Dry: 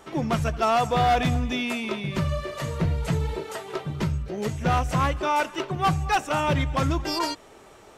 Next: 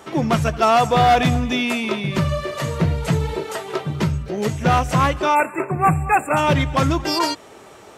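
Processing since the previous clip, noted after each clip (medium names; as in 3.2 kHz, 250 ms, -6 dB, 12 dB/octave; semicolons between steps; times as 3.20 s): high-pass 81 Hz; spectral selection erased 5.35–6.37 s, 2.7–7.1 kHz; trim +6.5 dB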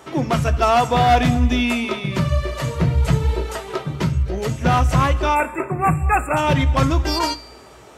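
feedback comb 180 Hz, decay 0.91 s, harmonics all, mix 50%; on a send at -12 dB: reverberation RT60 0.35 s, pre-delay 3 ms; on the sum: trim +4.5 dB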